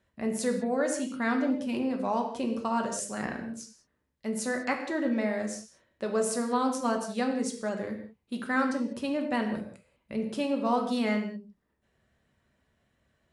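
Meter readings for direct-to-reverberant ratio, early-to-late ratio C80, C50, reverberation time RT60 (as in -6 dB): 2.5 dB, 9.0 dB, 7.0 dB, no single decay rate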